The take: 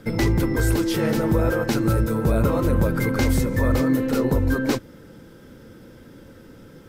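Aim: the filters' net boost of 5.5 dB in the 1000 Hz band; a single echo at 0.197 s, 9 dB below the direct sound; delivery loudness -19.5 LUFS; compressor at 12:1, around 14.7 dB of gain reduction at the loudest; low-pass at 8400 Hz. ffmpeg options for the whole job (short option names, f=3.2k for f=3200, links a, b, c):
-af "lowpass=8.4k,equalizer=f=1k:t=o:g=7,acompressor=threshold=-30dB:ratio=12,aecho=1:1:197:0.355,volume=15.5dB"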